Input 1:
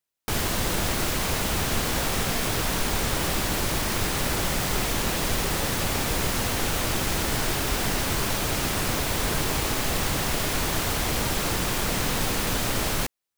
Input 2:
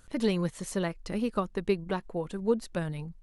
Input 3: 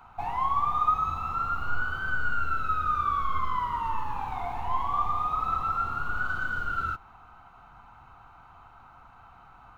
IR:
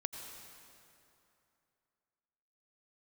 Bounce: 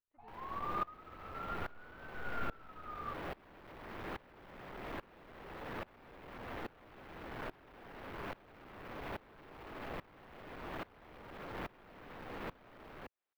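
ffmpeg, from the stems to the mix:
-filter_complex "[0:a]acrossover=split=80|340|2300|5500[s0][s1][s2][s3][s4];[s0]acompressor=threshold=0.0224:ratio=4[s5];[s1]acompressor=threshold=0.02:ratio=4[s6];[s2]acompressor=threshold=0.0141:ratio=4[s7];[s3]acompressor=threshold=0.00501:ratio=4[s8];[s4]acompressor=threshold=0.00562:ratio=4[s9];[s5][s6][s7][s8][s9]amix=inputs=5:normalize=0,asoftclip=type=tanh:threshold=0.0266,volume=1.41[s10];[1:a]volume=0.112,asplit=2[s11][s12];[2:a]volume=0.376[s13];[s12]apad=whole_len=431065[s14];[s13][s14]sidechaingate=range=0.0224:threshold=0.001:ratio=16:detection=peak[s15];[s10][s11]amix=inputs=2:normalize=0,bass=f=250:g=-11,treble=f=4000:g=-14,alimiter=level_in=2.51:limit=0.0631:level=0:latency=1,volume=0.398,volume=1[s16];[s15][s16]amix=inputs=2:normalize=0,equalizer=f=7600:w=0.65:g=-11,aeval=exprs='val(0)*pow(10,-23*if(lt(mod(-1.2*n/s,1),2*abs(-1.2)/1000),1-mod(-1.2*n/s,1)/(2*abs(-1.2)/1000),(mod(-1.2*n/s,1)-2*abs(-1.2)/1000)/(1-2*abs(-1.2)/1000))/20)':c=same"

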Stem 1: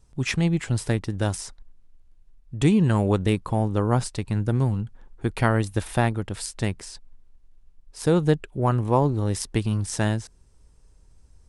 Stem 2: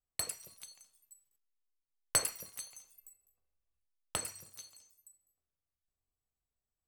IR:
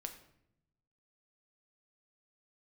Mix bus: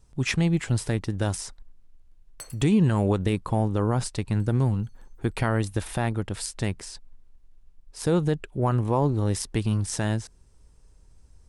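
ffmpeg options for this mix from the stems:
-filter_complex "[0:a]volume=1,asplit=2[s0][s1];[1:a]adelay=250,volume=0.237[s2];[s1]apad=whole_len=314087[s3];[s2][s3]sidechaincompress=threshold=0.0158:ratio=8:attack=44:release=188[s4];[s0][s4]amix=inputs=2:normalize=0,alimiter=limit=0.251:level=0:latency=1:release=49"

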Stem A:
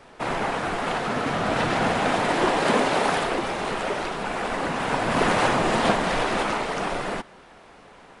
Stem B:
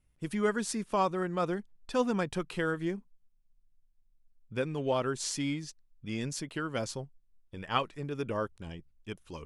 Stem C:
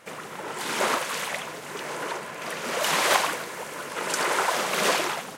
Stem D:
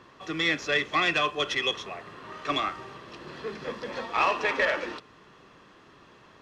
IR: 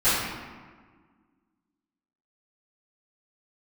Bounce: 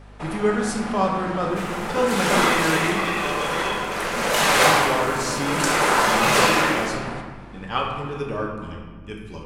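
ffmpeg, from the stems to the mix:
-filter_complex "[0:a]acompressor=threshold=0.0355:ratio=6,volume=0.596,asplit=2[s0][s1];[s1]volume=0.126[s2];[1:a]volume=1.19,asplit=2[s3][s4];[s4]volume=0.188[s5];[2:a]adelay=1500,volume=0.944,asplit=2[s6][s7];[s7]volume=0.251[s8];[3:a]adelay=2000,volume=0.188,asplit=2[s9][s10];[s10]volume=0.596[s11];[4:a]atrim=start_sample=2205[s12];[s2][s5][s8][s11]amix=inputs=4:normalize=0[s13];[s13][s12]afir=irnorm=-1:irlink=0[s14];[s0][s3][s6][s9][s14]amix=inputs=5:normalize=0,aeval=exprs='val(0)+0.00708*(sin(2*PI*50*n/s)+sin(2*PI*2*50*n/s)/2+sin(2*PI*3*50*n/s)/3+sin(2*PI*4*50*n/s)/4+sin(2*PI*5*50*n/s)/5)':c=same"

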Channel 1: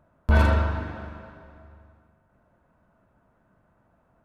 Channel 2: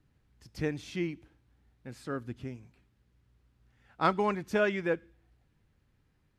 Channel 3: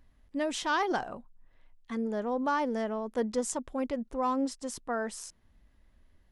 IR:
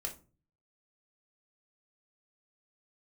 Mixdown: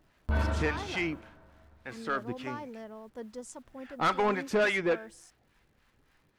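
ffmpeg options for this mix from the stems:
-filter_complex "[0:a]volume=0.316[s0];[1:a]acrossover=split=690[s1][s2];[s1]aeval=exprs='val(0)*(1-0.7/2+0.7/2*cos(2*PI*3.5*n/s))':c=same[s3];[s2]aeval=exprs='val(0)*(1-0.7/2-0.7/2*cos(2*PI*3.5*n/s))':c=same[s4];[s3][s4]amix=inputs=2:normalize=0,asplit=2[s5][s6];[s6]highpass=f=720:p=1,volume=12.6,asoftclip=type=tanh:threshold=0.178[s7];[s5][s7]amix=inputs=2:normalize=0,lowpass=f=3600:p=1,volume=0.501,volume=0.794[s8];[2:a]acrusher=bits=9:mix=0:aa=0.000001,volume=0.251[s9];[s0][s8][s9]amix=inputs=3:normalize=0"

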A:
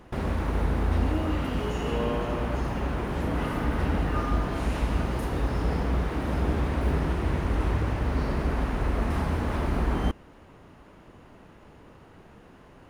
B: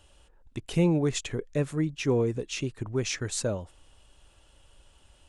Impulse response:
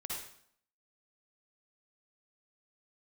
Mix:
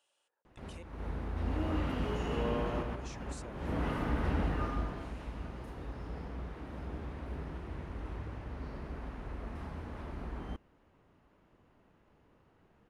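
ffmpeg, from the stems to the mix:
-filter_complex "[0:a]highshelf=f=8600:g=-10,adelay=450,volume=0.531,afade=t=in:st=1.35:d=0.37:silence=0.446684,afade=t=out:st=4.45:d=0.69:silence=0.316228[s0];[1:a]highpass=540,acompressor=threshold=0.0126:ratio=2,volume=0.188,asplit=3[s1][s2][s3];[s1]atrim=end=0.83,asetpts=PTS-STARTPTS,afade=t=out:st=0.826:d=0.004:c=hsin[s4];[s2]atrim=start=0.83:end=2.82,asetpts=PTS-STARTPTS,volume=0[s5];[s3]atrim=start=2.82,asetpts=PTS-STARTPTS,afade=t=in:d=0.004:c=hsin[s6];[s4][s5][s6]concat=n=3:v=0:a=1,asplit=2[s7][s8];[s8]apad=whole_len=588718[s9];[s0][s9]sidechaincompress=threshold=0.001:ratio=3:attack=9.6:release=252[s10];[s10][s7]amix=inputs=2:normalize=0"

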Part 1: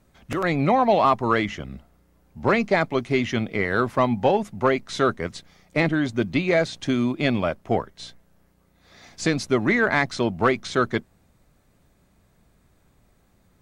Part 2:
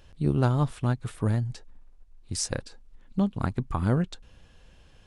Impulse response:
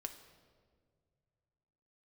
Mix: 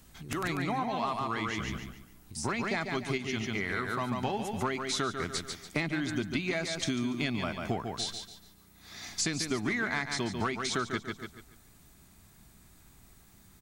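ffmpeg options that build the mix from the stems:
-filter_complex "[0:a]equalizer=f=530:w=3.4:g=-12,volume=1.19,asplit=2[s0][s1];[s1]volume=0.355[s2];[1:a]acompressor=threshold=0.02:ratio=6,volume=0.299,asplit=2[s3][s4];[s4]apad=whole_len=600321[s5];[s0][s5]sidechaincompress=threshold=0.00224:ratio=3:attack=39:release=374[s6];[s2]aecho=0:1:143|286|429|572|715:1|0.32|0.102|0.0328|0.0105[s7];[s6][s3][s7]amix=inputs=3:normalize=0,highshelf=f=4200:g=11.5,acompressor=threshold=0.0355:ratio=6"

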